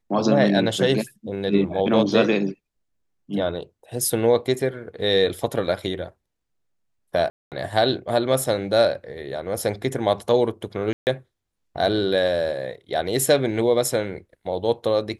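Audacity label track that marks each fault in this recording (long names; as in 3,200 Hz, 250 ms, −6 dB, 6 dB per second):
7.300000	7.520000	drop-out 218 ms
10.930000	11.070000	drop-out 139 ms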